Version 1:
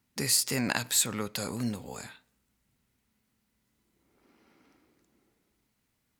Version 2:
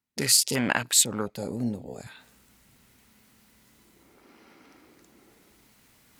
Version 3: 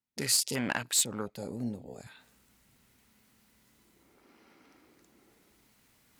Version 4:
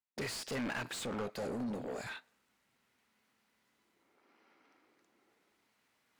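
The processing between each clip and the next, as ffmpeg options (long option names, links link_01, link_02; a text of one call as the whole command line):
ffmpeg -i in.wav -af "afwtdn=0.0158,lowshelf=frequency=240:gain=-5.5,areverse,acompressor=mode=upward:threshold=-43dB:ratio=2.5,areverse,volume=6dB" out.wav
ffmpeg -i in.wav -af "asoftclip=type=hard:threshold=-12dB,volume=-6dB" out.wav
ffmpeg -i in.wav -filter_complex "[0:a]agate=range=-21dB:threshold=-53dB:ratio=16:detection=peak,asoftclip=type=tanh:threshold=-30.5dB,asplit=2[link_01][link_02];[link_02]highpass=frequency=720:poles=1,volume=25dB,asoftclip=type=tanh:threshold=-30.5dB[link_03];[link_01][link_03]amix=inputs=2:normalize=0,lowpass=frequency=2200:poles=1,volume=-6dB,volume=-1dB" out.wav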